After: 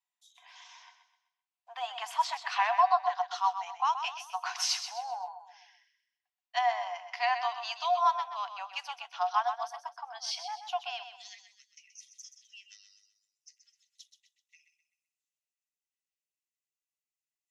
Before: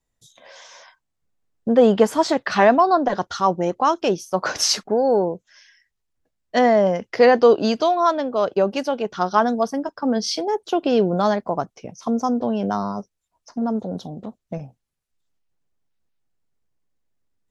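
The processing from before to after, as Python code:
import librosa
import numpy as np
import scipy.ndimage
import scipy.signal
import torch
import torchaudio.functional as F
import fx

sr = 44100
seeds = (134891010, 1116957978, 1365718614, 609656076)

y = fx.cheby_ripple_highpass(x, sr, hz=fx.steps((0.0, 700.0), (11.03, 1900.0)), ripple_db=9)
y = fx.echo_feedback(y, sr, ms=128, feedback_pct=39, wet_db=-9.5)
y = F.gain(torch.from_numpy(y), -4.0).numpy()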